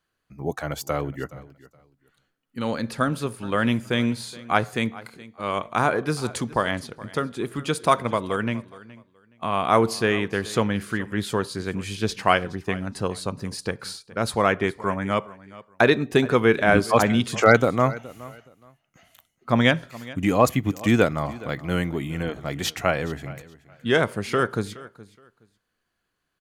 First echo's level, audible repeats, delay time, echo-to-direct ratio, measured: −19.5 dB, 2, 420 ms, −19.5 dB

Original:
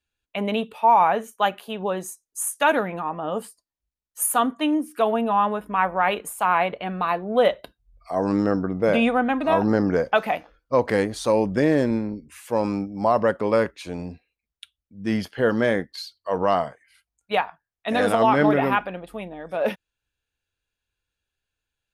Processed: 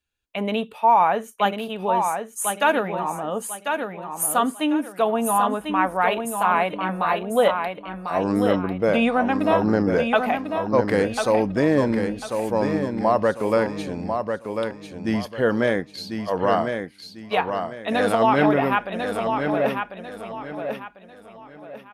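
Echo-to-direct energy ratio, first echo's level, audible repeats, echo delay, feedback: −5.5 dB, −6.0 dB, 3, 1,046 ms, 31%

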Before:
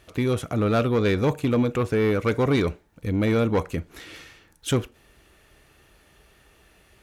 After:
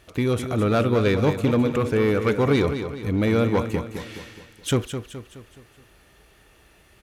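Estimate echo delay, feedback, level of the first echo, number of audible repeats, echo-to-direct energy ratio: 211 ms, 47%, −9.0 dB, 4, −8.0 dB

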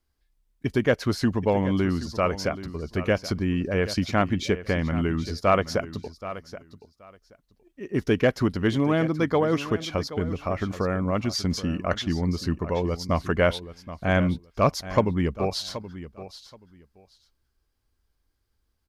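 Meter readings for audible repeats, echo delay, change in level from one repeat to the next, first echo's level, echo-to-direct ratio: 2, 777 ms, −15.0 dB, −14.0 dB, −14.0 dB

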